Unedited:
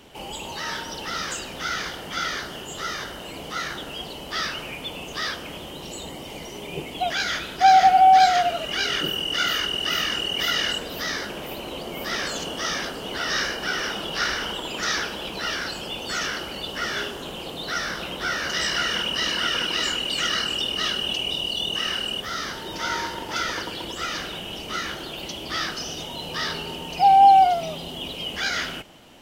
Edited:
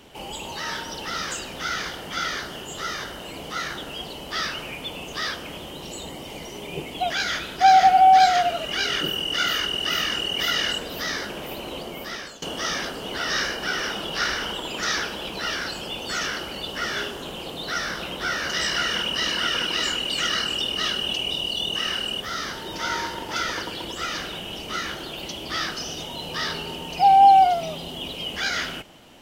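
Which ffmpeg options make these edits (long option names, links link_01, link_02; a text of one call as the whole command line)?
ffmpeg -i in.wav -filter_complex "[0:a]asplit=2[link_01][link_02];[link_01]atrim=end=12.42,asetpts=PTS-STARTPTS,afade=type=out:start_time=11.78:duration=0.64:silence=0.11885[link_03];[link_02]atrim=start=12.42,asetpts=PTS-STARTPTS,afade=type=in:duration=0.004:curve=hsin:silence=0.11885[link_04];[link_03][link_04]concat=n=2:v=0:a=1" out.wav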